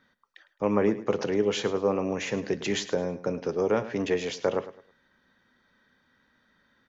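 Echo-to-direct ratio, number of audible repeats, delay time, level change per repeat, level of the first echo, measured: −14.5 dB, 2, 106 ms, −11.0 dB, −15.0 dB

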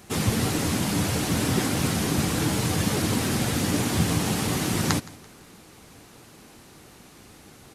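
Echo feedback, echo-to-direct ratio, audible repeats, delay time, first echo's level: 41%, −20.0 dB, 2, 168 ms, −21.0 dB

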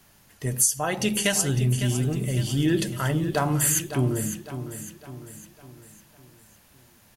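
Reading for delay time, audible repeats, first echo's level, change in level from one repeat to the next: 555 ms, 4, −11.0 dB, −6.5 dB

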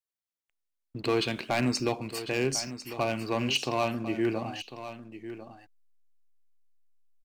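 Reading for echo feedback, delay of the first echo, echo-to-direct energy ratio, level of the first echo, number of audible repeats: repeats not evenly spaced, 1,049 ms, −12.5 dB, −12.5 dB, 1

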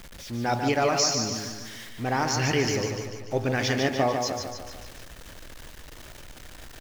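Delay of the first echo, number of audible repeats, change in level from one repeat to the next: 147 ms, 5, −5.0 dB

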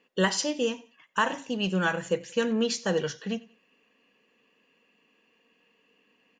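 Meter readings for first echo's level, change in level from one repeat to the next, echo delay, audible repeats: −21.5 dB, −10.0 dB, 91 ms, 2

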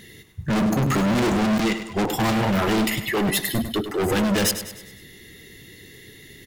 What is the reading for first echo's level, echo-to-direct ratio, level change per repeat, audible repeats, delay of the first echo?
−10.5 dB, −9.5 dB, −6.5 dB, 4, 101 ms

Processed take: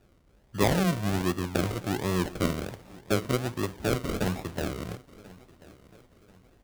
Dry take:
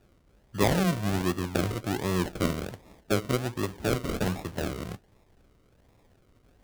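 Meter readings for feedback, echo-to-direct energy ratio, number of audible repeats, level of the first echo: 36%, −20.5 dB, 2, −21.0 dB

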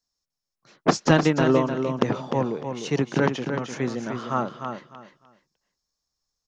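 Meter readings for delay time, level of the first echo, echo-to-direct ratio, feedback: 302 ms, −7.0 dB, −7.0 dB, 23%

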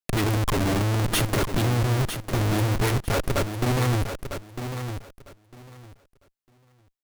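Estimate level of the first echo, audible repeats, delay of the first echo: −8.5 dB, 2, 952 ms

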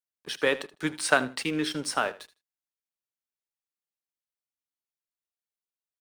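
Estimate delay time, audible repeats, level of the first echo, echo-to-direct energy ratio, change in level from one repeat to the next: 78 ms, 2, −17.5 dB, −17.5 dB, −15.5 dB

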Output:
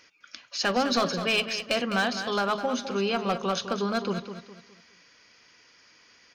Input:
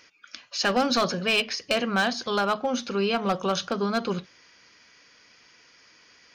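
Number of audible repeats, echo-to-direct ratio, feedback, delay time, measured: 3, −9.5 dB, 35%, 206 ms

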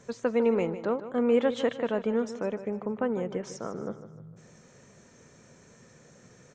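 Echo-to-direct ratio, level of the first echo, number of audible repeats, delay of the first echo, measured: −12.0 dB, −13.0 dB, 4, 152 ms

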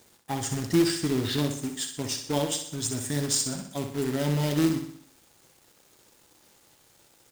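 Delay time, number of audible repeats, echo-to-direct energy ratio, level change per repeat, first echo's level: 62 ms, 5, −6.0 dB, −6.0 dB, −7.5 dB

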